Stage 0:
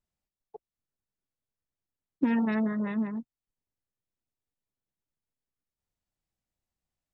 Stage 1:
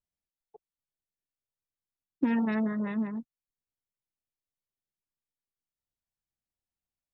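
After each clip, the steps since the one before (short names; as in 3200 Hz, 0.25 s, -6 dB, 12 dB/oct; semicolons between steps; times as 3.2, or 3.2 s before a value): gate -39 dBFS, range -7 dB; gain -1 dB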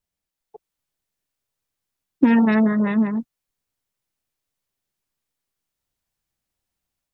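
AGC gain up to 4 dB; gain +7.5 dB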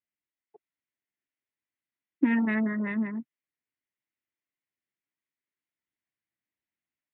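speaker cabinet 150–3100 Hz, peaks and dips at 170 Hz -4 dB, 310 Hz +4 dB, 490 Hz -8 dB, 790 Hz -7 dB, 1200 Hz -4 dB, 2000 Hz +8 dB; gain -8.5 dB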